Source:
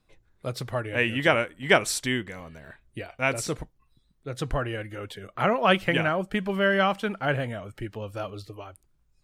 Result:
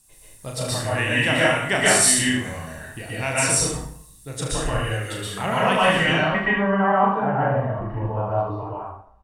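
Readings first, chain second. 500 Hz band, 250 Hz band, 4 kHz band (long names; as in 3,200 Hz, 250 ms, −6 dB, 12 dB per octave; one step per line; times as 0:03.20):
+3.5 dB, +5.0 dB, +6.5 dB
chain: background noise violet −62 dBFS
comb filter 1.1 ms, depth 36%
in parallel at +1 dB: downward compressor, threshold −33 dBFS, peak gain reduction 17.5 dB
on the sum: low-pass filter sweep 9,100 Hz → 970 Hz, 0:05.82–0:06.63
high-shelf EQ 7,100 Hz +8.5 dB
on a send: ambience of single reflections 36 ms −4.5 dB, 75 ms −8 dB
on the sum: dense smooth reverb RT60 0.63 s, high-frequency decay 0.75×, pre-delay 110 ms, DRR −5.5 dB
level −6.5 dB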